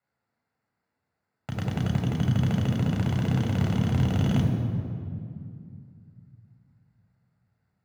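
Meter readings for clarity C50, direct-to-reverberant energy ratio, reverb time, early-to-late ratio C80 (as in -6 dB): 3.5 dB, -1.0 dB, 2.4 s, 5.0 dB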